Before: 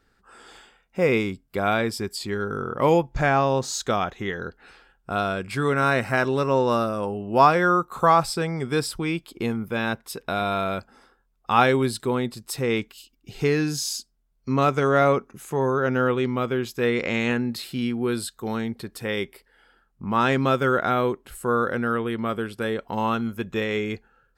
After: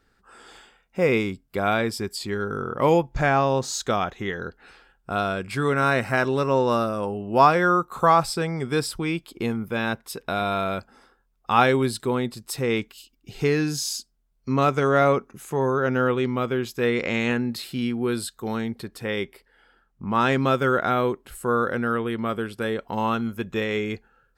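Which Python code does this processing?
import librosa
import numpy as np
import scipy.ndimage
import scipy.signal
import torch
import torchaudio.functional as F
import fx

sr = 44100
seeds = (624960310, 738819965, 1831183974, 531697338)

y = fx.high_shelf(x, sr, hz=6100.0, db=-5.5, at=(18.88, 20.15))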